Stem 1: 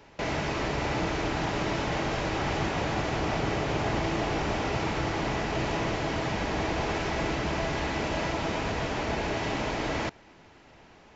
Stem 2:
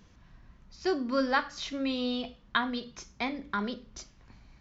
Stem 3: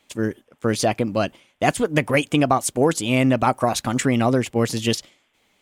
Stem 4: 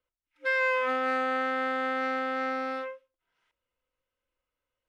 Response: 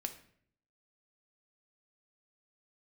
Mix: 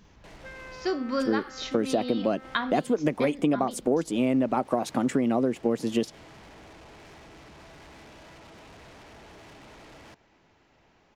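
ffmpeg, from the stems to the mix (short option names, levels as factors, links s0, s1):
-filter_complex "[0:a]alimiter=limit=0.075:level=0:latency=1:release=83,asoftclip=type=tanh:threshold=0.0112,adelay=50,volume=0.376[s0];[1:a]volume=1.19,asplit=2[s1][s2];[2:a]highpass=f=140:w=0.5412,highpass=f=140:w=1.3066,equalizer=f=340:w=0.33:g=14,adelay=1100,volume=0.335[s3];[3:a]acompressor=threshold=0.0126:ratio=4,volume=0.447[s4];[s2]apad=whole_len=494244[s5];[s0][s5]sidechaincompress=threshold=0.00447:ratio=8:attack=27:release=265[s6];[s6][s1][s3][s4]amix=inputs=4:normalize=0,acompressor=threshold=0.0794:ratio=4"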